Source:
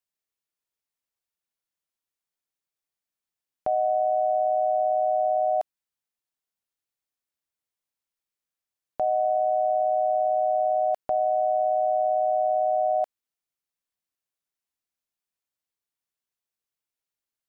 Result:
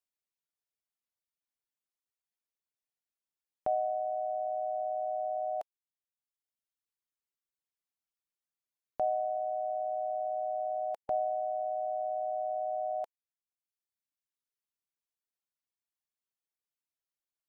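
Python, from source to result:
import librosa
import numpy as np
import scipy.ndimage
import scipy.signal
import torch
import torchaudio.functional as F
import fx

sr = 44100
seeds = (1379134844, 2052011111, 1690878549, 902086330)

y = fx.dereverb_blind(x, sr, rt60_s=1.4)
y = y * librosa.db_to_amplitude(-5.0)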